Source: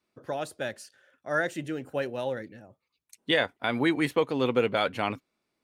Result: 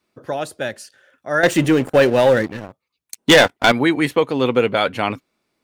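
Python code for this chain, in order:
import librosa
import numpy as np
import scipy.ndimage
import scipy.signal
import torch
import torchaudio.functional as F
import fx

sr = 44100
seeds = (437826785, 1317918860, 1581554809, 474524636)

y = fx.leveller(x, sr, passes=3, at=(1.43, 3.72))
y = y * librosa.db_to_amplitude(8.0)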